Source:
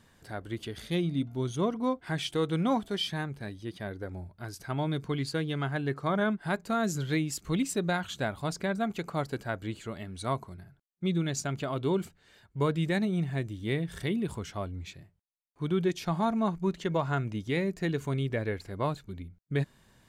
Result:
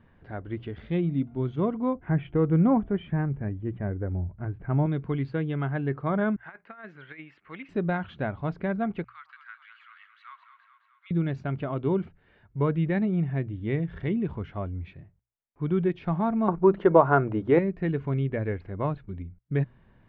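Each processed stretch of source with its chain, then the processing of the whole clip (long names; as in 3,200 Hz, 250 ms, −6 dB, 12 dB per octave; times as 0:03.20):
0:01.95–0:04.86: low-pass filter 2,700 Hz 24 dB per octave + spectral tilt −2 dB per octave
0:06.36–0:07.69: resonant band-pass 1,900 Hz, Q 1.6 + compressor whose output falls as the input rises −40 dBFS, ratio −0.5
0:09.04–0:11.11: Butterworth high-pass 1,200 Hz 48 dB per octave + downward compressor 1.5 to 1, threshold −48 dBFS + delay that swaps between a low-pass and a high-pass 106 ms, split 880 Hz, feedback 77%, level −7 dB
0:16.48–0:17.59: flat-topped bell 690 Hz +11.5 dB 2.6 octaves + mains-hum notches 50/100/150/200 Hz
whole clip: low-pass filter 2,700 Hz 24 dB per octave; spectral tilt −1.5 dB per octave; mains-hum notches 60/120 Hz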